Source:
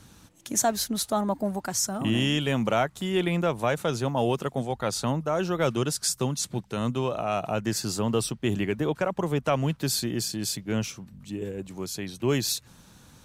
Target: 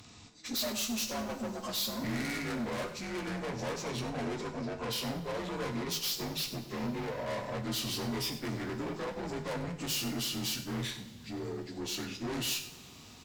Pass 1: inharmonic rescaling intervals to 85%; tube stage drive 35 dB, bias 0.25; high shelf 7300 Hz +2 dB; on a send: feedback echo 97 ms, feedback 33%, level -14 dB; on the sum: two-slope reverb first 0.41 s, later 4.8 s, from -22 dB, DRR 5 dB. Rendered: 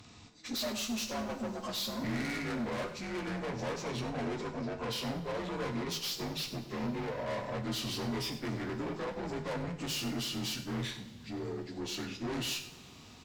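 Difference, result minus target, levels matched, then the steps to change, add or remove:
8000 Hz band -3.0 dB
change: high shelf 7300 Hz +11 dB

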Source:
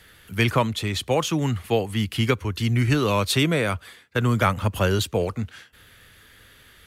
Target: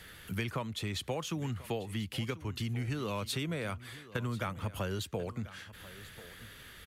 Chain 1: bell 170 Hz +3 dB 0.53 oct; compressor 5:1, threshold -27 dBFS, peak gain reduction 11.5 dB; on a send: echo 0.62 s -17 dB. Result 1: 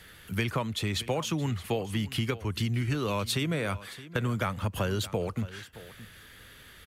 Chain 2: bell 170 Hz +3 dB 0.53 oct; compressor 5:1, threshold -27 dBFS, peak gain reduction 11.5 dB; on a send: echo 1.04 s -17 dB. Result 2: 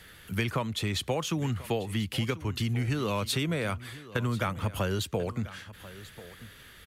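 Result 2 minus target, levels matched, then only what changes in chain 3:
compressor: peak gain reduction -6 dB
change: compressor 5:1, threshold -34.5 dBFS, peak gain reduction 17.5 dB

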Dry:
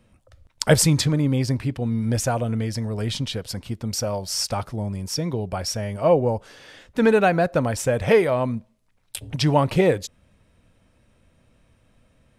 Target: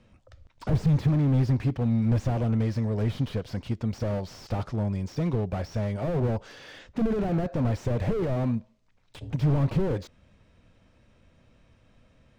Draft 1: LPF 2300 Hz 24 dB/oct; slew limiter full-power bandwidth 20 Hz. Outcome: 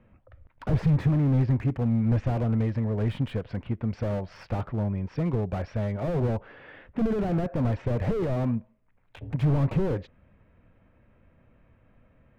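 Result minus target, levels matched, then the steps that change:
8000 Hz band -8.5 dB
change: LPF 6900 Hz 24 dB/oct

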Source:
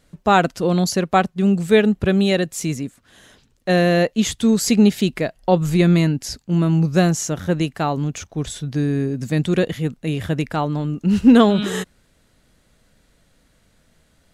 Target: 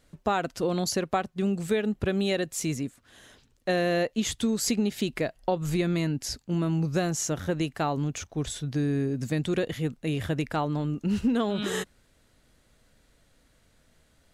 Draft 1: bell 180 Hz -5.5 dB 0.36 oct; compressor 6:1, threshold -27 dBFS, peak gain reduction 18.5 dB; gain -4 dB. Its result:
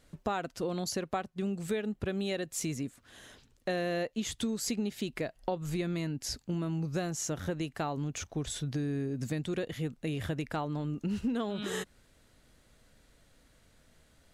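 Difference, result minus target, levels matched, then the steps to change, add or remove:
compressor: peak gain reduction +7 dB
change: compressor 6:1, threshold -18.5 dBFS, peak gain reduction 11.5 dB

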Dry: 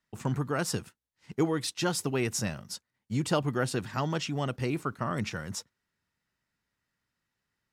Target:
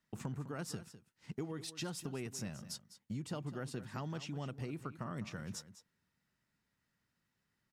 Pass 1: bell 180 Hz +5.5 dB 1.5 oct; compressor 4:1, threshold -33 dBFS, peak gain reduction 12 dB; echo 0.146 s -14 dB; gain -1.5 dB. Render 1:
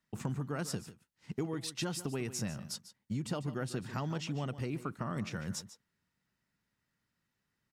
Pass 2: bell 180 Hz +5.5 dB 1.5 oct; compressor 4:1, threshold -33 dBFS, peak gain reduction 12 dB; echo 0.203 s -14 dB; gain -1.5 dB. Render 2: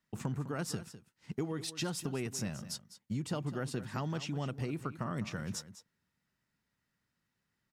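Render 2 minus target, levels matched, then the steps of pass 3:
compressor: peak gain reduction -5 dB
bell 180 Hz +5.5 dB 1.5 oct; compressor 4:1, threshold -40 dBFS, peak gain reduction 17.5 dB; echo 0.203 s -14 dB; gain -1.5 dB

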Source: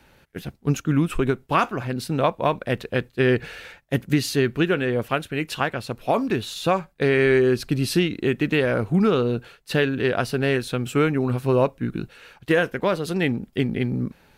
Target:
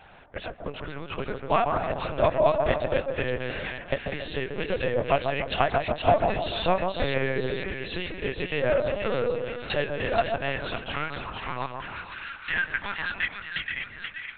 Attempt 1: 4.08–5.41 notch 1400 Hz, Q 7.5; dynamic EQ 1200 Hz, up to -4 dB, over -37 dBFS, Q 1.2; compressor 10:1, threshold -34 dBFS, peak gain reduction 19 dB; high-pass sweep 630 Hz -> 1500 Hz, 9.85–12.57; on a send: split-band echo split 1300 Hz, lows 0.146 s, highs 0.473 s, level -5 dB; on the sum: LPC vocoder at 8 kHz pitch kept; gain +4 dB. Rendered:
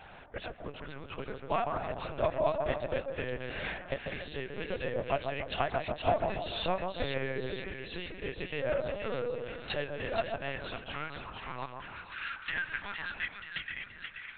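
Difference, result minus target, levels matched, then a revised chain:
compressor: peak gain reduction +8 dB
4.08–5.41 notch 1400 Hz, Q 7.5; dynamic EQ 1200 Hz, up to -4 dB, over -37 dBFS, Q 1.2; compressor 10:1, threshold -25 dBFS, peak gain reduction 11 dB; high-pass sweep 630 Hz -> 1500 Hz, 9.85–12.57; on a send: split-band echo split 1300 Hz, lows 0.146 s, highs 0.473 s, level -5 dB; on the sum: LPC vocoder at 8 kHz pitch kept; gain +4 dB

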